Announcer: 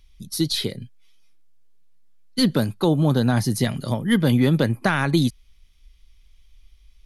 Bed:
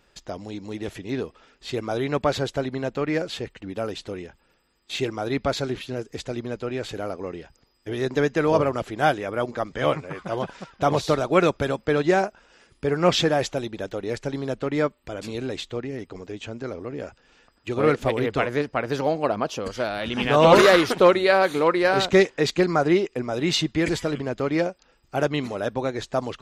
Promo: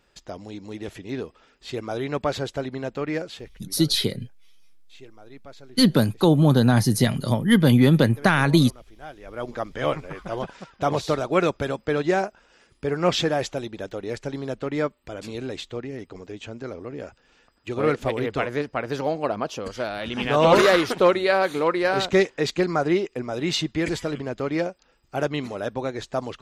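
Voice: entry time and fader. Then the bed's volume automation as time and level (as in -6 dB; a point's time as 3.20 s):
3.40 s, +2.0 dB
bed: 3.15 s -2.5 dB
4.02 s -20.5 dB
9.08 s -20.5 dB
9.50 s -2 dB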